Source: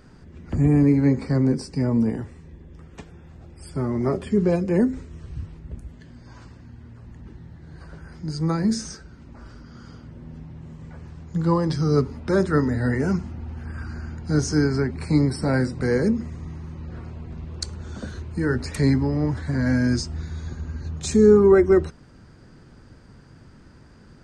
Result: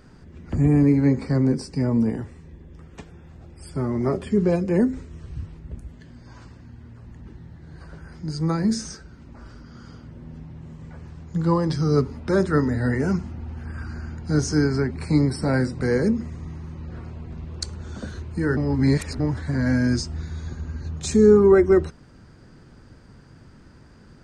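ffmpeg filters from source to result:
ffmpeg -i in.wav -filter_complex "[0:a]asplit=3[link_01][link_02][link_03];[link_01]atrim=end=18.572[link_04];[link_02]atrim=start=18.568:end=19.202,asetpts=PTS-STARTPTS,areverse[link_05];[link_03]atrim=start=19.198[link_06];[link_04][link_05]acrossfade=duration=0.004:curve1=hsin:curve2=hsin[link_07];[link_07][link_06]acrossfade=duration=0.004:curve1=hsin:curve2=hsin" out.wav

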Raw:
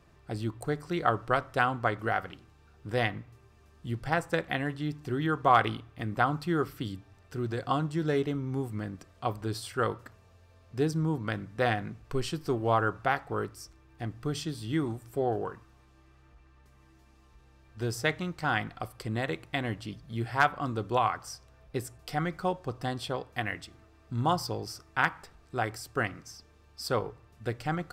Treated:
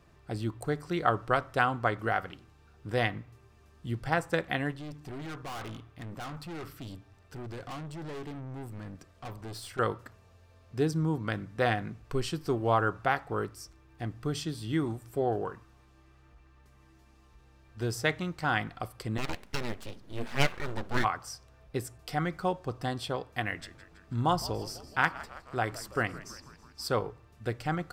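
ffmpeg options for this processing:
ffmpeg -i in.wav -filter_complex "[0:a]asettb=1/sr,asplit=3[link_01][link_02][link_03];[link_01]atrim=end=4.714[link_04];[link_02]atrim=start=4.71:end=9.79,asetpts=PTS-STARTPTS,afade=type=in:duration=0.004:curve=qsin,afade=type=out:start_time=5.076:duration=0.004:curve=qsin,aeval=exprs='(tanh(79.4*val(0)+0.35)-tanh(0.35))/79.4':channel_layout=same[link_05];[link_03]atrim=start=9.786[link_06];[link_04][link_05]acrossfade=duration=0.004:curve1=hsin:curve2=qsin[link_07];[link_07][link_06]acrossfade=duration=0.004:curve1=qsin:curve2=hsin,asplit=3[link_08][link_09][link_10];[link_08]afade=type=out:start_time=19.17:duration=0.02[link_11];[link_09]aeval=exprs='abs(val(0))':channel_layout=same,afade=type=in:start_time=19.17:duration=0.02,afade=type=out:start_time=21.03:duration=0.02[link_12];[link_10]afade=type=in:start_time=21.03:duration=0.02[link_13];[link_11][link_12][link_13]amix=inputs=3:normalize=0,asettb=1/sr,asplit=3[link_14][link_15][link_16];[link_14]atrim=end=23.424[link_17];[link_15]atrim=start=23.42:end=26.9,asetpts=PTS-STARTPTS,afade=type=in:duration=0.004:curve=qsin,afade=type=out:start_time=3.476:duration=0.004:curve=qsin,asplit=7[link_18][link_19][link_20][link_21][link_22][link_23][link_24];[link_19]adelay=163,afreqshift=-92,volume=-17dB[link_25];[link_20]adelay=326,afreqshift=-184,volume=-20.9dB[link_26];[link_21]adelay=489,afreqshift=-276,volume=-24.8dB[link_27];[link_22]adelay=652,afreqshift=-368,volume=-28.6dB[link_28];[link_23]adelay=815,afreqshift=-460,volume=-32.5dB[link_29];[link_24]adelay=978,afreqshift=-552,volume=-36.4dB[link_30];[link_18][link_25][link_26][link_27][link_28][link_29][link_30]amix=inputs=7:normalize=0,atrim=end_sample=153468[link_31];[link_16]atrim=start=26.896[link_32];[link_17][link_31]acrossfade=duration=0.004:curve1=hsin:curve2=qsin[link_33];[link_33][link_32]acrossfade=duration=0.004:curve1=qsin:curve2=hsin" out.wav

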